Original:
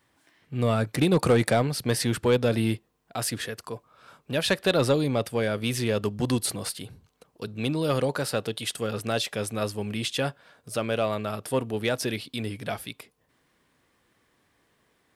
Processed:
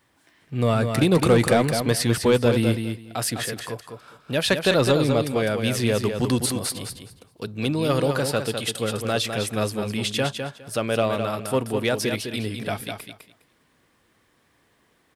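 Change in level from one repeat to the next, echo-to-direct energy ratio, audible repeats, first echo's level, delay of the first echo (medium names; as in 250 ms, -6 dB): -15.0 dB, -6.5 dB, 2, -6.5 dB, 205 ms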